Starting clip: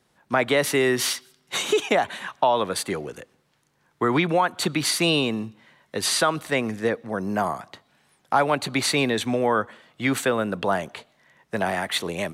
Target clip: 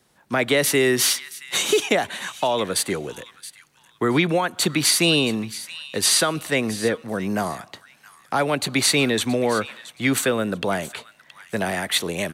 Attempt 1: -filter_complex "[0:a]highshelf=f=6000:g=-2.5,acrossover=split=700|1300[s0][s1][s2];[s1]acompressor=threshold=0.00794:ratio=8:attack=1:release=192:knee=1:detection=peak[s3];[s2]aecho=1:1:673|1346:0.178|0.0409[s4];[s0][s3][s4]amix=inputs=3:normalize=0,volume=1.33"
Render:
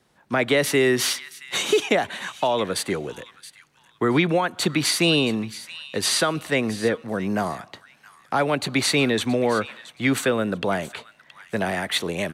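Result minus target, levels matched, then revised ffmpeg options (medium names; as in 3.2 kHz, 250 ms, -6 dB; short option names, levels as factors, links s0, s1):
8 kHz band -4.5 dB
-filter_complex "[0:a]highshelf=f=6000:g=6.5,acrossover=split=700|1300[s0][s1][s2];[s1]acompressor=threshold=0.00794:ratio=8:attack=1:release=192:knee=1:detection=peak[s3];[s2]aecho=1:1:673|1346:0.178|0.0409[s4];[s0][s3][s4]amix=inputs=3:normalize=0,volume=1.33"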